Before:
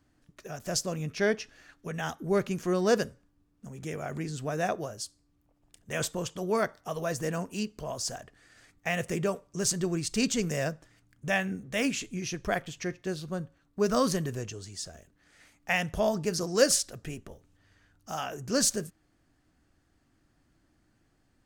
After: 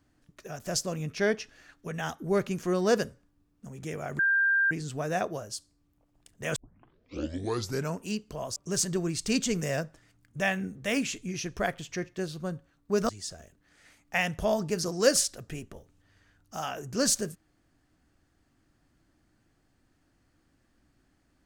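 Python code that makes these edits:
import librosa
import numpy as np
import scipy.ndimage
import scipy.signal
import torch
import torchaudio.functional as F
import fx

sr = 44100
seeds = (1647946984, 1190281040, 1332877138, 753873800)

y = fx.edit(x, sr, fx.insert_tone(at_s=4.19, length_s=0.52, hz=1590.0, db=-21.0),
    fx.tape_start(start_s=6.04, length_s=1.42),
    fx.cut(start_s=8.04, length_s=1.4),
    fx.cut(start_s=13.97, length_s=0.67), tone=tone)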